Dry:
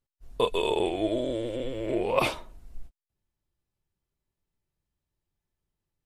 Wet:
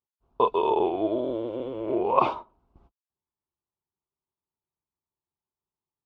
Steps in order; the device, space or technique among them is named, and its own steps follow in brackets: gate -38 dBFS, range -9 dB; guitar cabinet (speaker cabinet 92–4000 Hz, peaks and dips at 130 Hz +4 dB, 400 Hz +6 dB, 1800 Hz -7 dB); graphic EQ 125/500/1000/2000/4000 Hz -8/-5/+11/-9/-9 dB; gain +1.5 dB

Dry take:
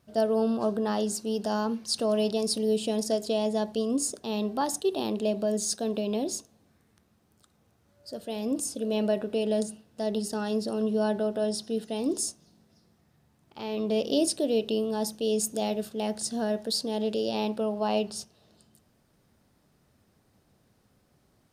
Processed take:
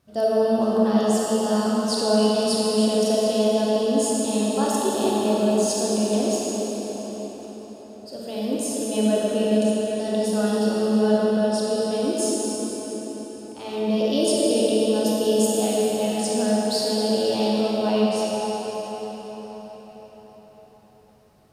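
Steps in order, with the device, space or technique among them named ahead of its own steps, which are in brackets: cathedral (reverb RT60 5.4 s, pre-delay 25 ms, DRR -6 dB)

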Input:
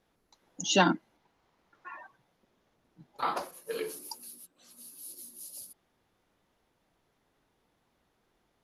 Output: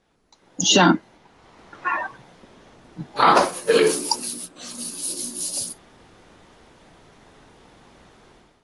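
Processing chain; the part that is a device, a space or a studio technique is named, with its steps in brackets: low-bitrate web radio (AGC gain up to 15 dB; limiter -12 dBFS, peak gain reduction 10.5 dB; gain +6.5 dB; AAC 32 kbps 22050 Hz)

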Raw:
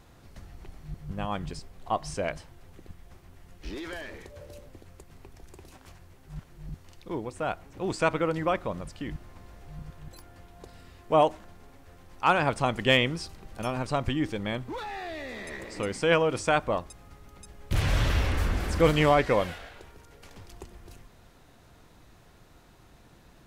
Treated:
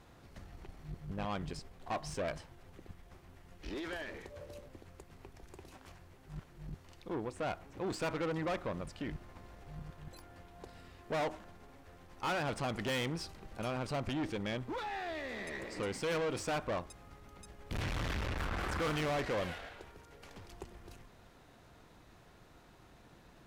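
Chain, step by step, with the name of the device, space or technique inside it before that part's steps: 18.39–19.01 bell 1300 Hz +8.5 dB 1.1 oct; tube preamp driven hard (tube stage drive 31 dB, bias 0.45; low shelf 150 Hz -4.5 dB; high shelf 5200 Hz -6 dB)

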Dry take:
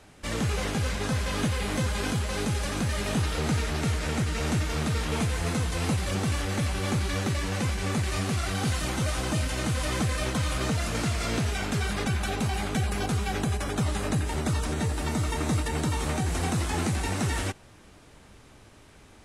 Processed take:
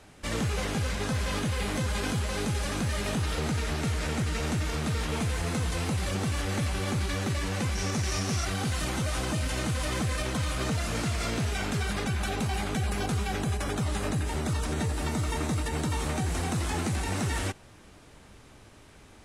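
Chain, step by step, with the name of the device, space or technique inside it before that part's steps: limiter into clipper (limiter -21 dBFS, peak gain reduction 5 dB; hard clip -22 dBFS, distortion -36 dB); 7.75–8.45 bell 5700 Hz +11.5 dB 0.29 oct

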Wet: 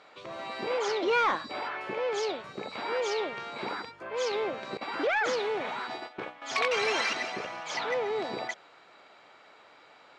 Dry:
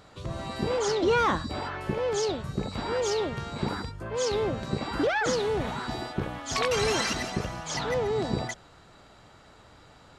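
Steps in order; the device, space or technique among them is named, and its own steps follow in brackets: intercom (BPF 440–3900 Hz; bell 2300 Hz +7 dB 0.26 oct; soft clip -16 dBFS, distortion -25 dB); 4.77–6.42 gate -36 dBFS, range -12 dB; high shelf 6900 Hz +4.5 dB

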